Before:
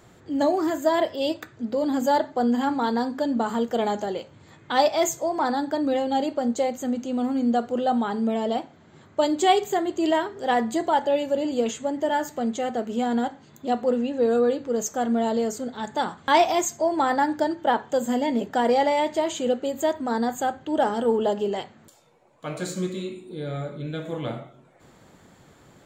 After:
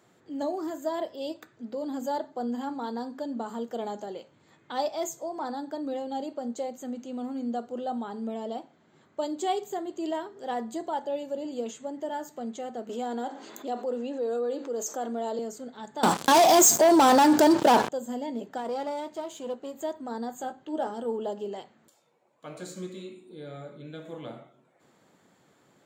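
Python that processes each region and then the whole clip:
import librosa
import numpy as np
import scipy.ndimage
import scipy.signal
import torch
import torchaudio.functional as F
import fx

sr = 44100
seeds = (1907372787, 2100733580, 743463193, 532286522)

y = fx.chain(x, sr, fx.highpass(hz=270.0, slope=24),
    fx.env_flatten(amount_pct=50), at=(12.89, 15.39))
y = fx.chain(y, sr, fx.high_shelf(hz=5100.0, db=10.5),
    fx.leveller(passes=5),
    fx.env_flatten(amount_pct=50), at=(16.03, 17.89))
y = fx.chain(y, sr, fx.halfwave_gain(db=-7.0),
    fx.doubler(ms=14.0, db=-13.5), at=(18.57, 19.82))
y = fx.chain(y, sr, fx.high_shelf(hz=12000.0, db=-4.0),
    fx.doubler(ms=16.0, db=-7.5), at=(20.38, 20.91))
y = scipy.signal.sosfilt(scipy.signal.butter(2, 170.0, 'highpass', fs=sr, output='sos'), y)
y = fx.dynamic_eq(y, sr, hz=2100.0, q=1.1, threshold_db=-41.0, ratio=4.0, max_db=-7)
y = y * librosa.db_to_amplitude(-8.5)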